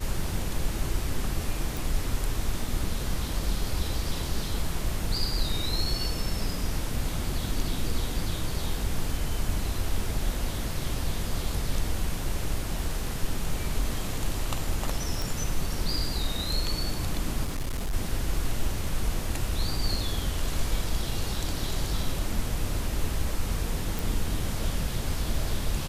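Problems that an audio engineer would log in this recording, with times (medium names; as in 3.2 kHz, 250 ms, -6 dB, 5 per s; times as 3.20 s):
1.77 s: pop
15.22 s: pop
17.45–17.94 s: clipped -26 dBFS
23.99 s: pop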